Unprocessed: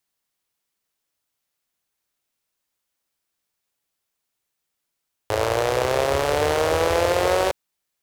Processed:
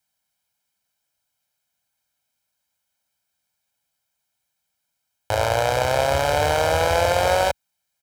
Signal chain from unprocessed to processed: high-pass 47 Hz; comb 1.3 ms, depth 72%

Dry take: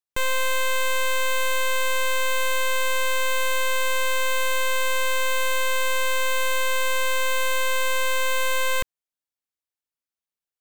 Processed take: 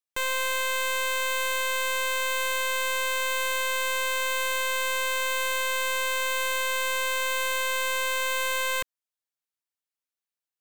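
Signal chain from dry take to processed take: bass shelf 300 Hz -11 dB; trim -1.5 dB

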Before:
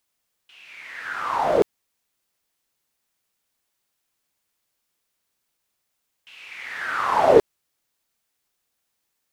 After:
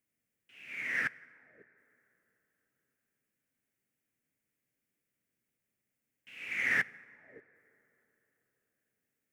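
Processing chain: inverted gate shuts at -22 dBFS, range -42 dB; ten-band graphic EQ 125 Hz +11 dB, 250 Hz +11 dB, 500 Hz +4 dB, 1 kHz -10 dB, 2 kHz +10 dB, 4 kHz -11 dB; in parallel at -9 dB: hard clipper -33.5 dBFS, distortion -7 dB; on the sum: plate-style reverb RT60 4 s, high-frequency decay 0.35×, DRR 11 dB; upward expansion 1.5:1, over -51 dBFS

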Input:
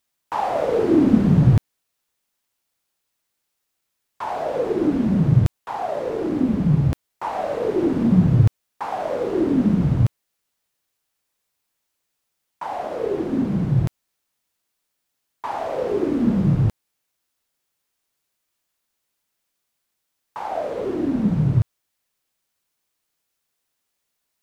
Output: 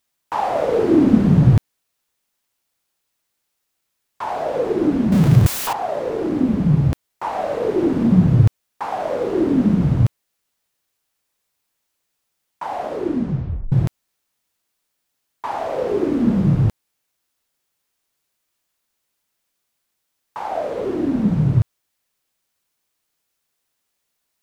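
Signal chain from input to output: 5.12–5.73 s: jump at every zero crossing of -21 dBFS; 12.86 s: tape stop 0.86 s; trim +2 dB

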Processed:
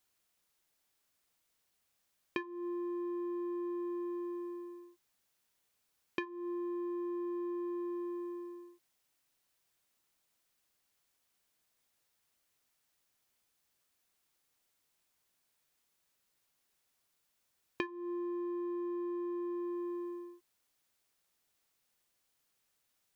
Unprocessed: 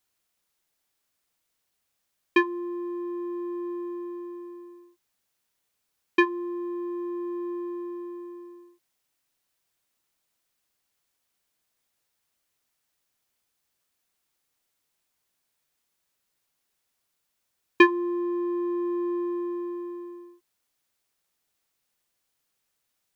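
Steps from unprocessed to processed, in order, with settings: compression 20:1, threshold -34 dBFS, peak gain reduction 23.5 dB; trim -1 dB

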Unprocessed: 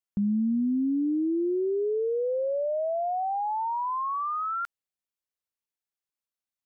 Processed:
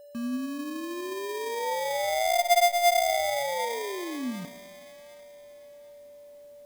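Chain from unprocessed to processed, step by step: Doppler pass-by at 2.68 s, 47 m/s, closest 12 m; reverse; upward compressor, threshold -51 dBFS; reverse; high-pass 49 Hz 24 dB/octave; on a send at -15 dB: reverberation RT60 1.8 s, pre-delay 84 ms; on the sum: sample-rate reducer 1.4 kHz, jitter 0%; hum notches 60/120 Hz; small resonant body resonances 250/900/1300 Hz, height 8 dB, ringing for 95 ms; whistle 580 Hz -55 dBFS; word length cut 12-bit, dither none; feedback echo behind a high-pass 747 ms, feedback 31%, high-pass 1.4 kHz, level -12.5 dB; trim +8.5 dB

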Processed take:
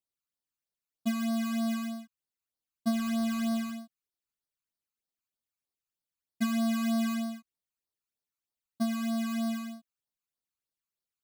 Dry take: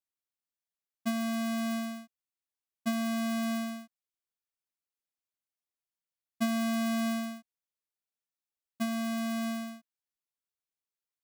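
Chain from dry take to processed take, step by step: 2.91–3.72 s: sample-rate reducer 15 kHz, jitter 20%; phase shifter stages 12, 3.2 Hz, lowest notch 550–2600 Hz; trim +2 dB

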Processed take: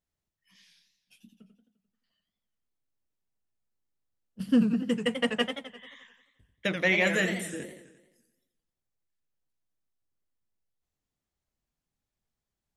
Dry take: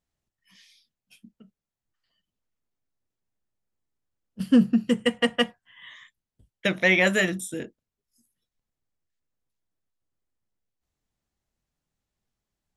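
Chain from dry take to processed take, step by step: modulated delay 87 ms, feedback 57%, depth 166 cents, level -8 dB; trim -5 dB

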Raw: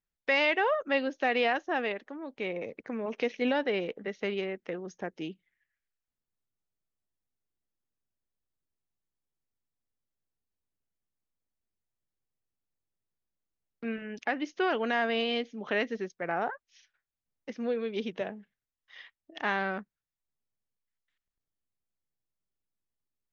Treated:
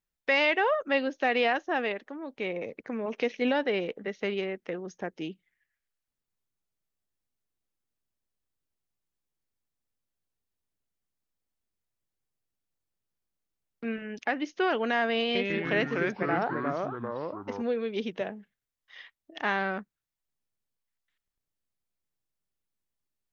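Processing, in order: 15.20–17.62 s: ever faster or slower copies 149 ms, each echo -3 st, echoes 3; trim +1.5 dB

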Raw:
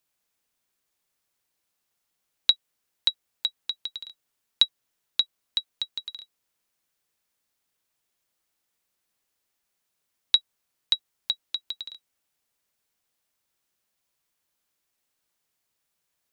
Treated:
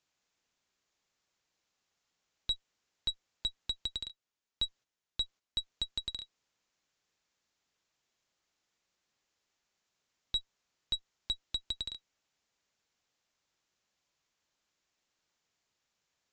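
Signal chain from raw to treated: 4.08–5.59 s: gate -45 dBFS, range -9 dB; valve stage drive 30 dB, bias 0.6; resampled via 16 kHz; trim +3 dB

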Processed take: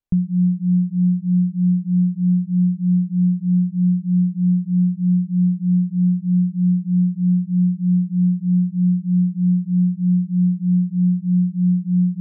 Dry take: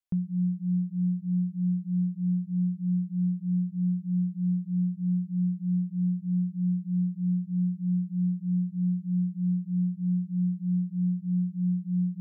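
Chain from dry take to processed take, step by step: tilt EQ -3 dB/octave; trim +2.5 dB

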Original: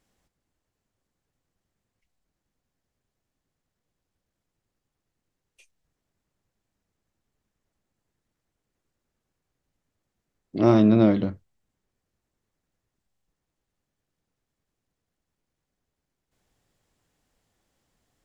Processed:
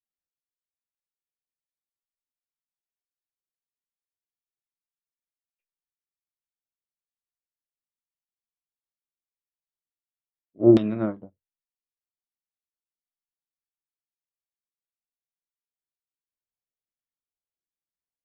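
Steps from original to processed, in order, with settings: LFO low-pass saw down 1.3 Hz 320–3500 Hz; upward expansion 2.5:1, over -33 dBFS

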